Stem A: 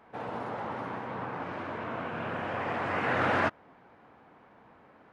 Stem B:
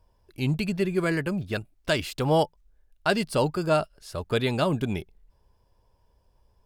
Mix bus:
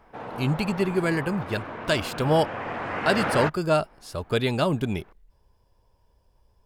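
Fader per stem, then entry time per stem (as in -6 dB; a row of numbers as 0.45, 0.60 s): +0.5, +1.0 dB; 0.00, 0.00 s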